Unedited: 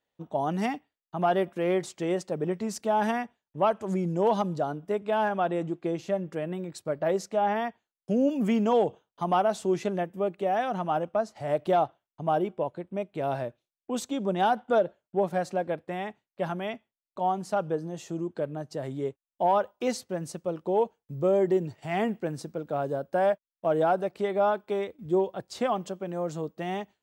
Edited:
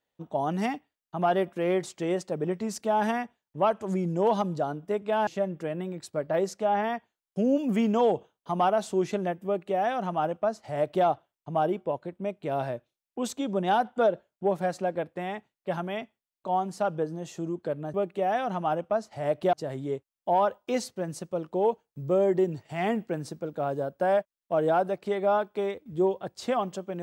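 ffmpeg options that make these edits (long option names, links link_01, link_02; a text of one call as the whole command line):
ffmpeg -i in.wav -filter_complex "[0:a]asplit=4[link_01][link_02][link_03][link_04];[link_01]atrim=end=5.272[link_05];[link_02]atrim=start=5.988:end=18.662[link_06];[link_03]atrim=start=10.178:end=11.772[link_07];[link_04]atrim=start=18.658[link_08];[link_05][link_06]acrossfade=duration=0.004:curve1=hsin:curve2=hsin[link_09];[link_09][link_07]acrossfade=duration=0.004:curve1=hsin:curve2=hsin[link_10];[link_10][link_08]acrossfade=duration=0.004:curve1=hsin:curve2=hsin" out.wav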